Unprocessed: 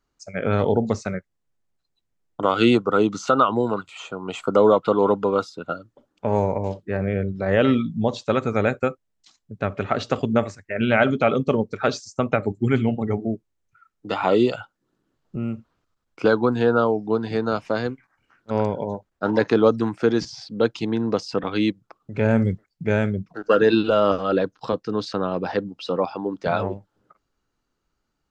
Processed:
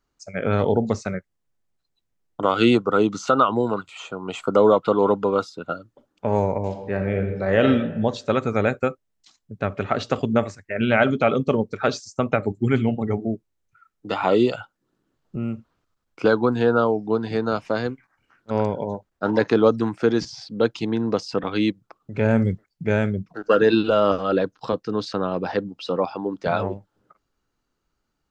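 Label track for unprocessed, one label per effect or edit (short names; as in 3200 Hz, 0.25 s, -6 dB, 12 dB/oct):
6.630000	7.640000	reverb throw, RT60 1.2 s, DRR 5 dB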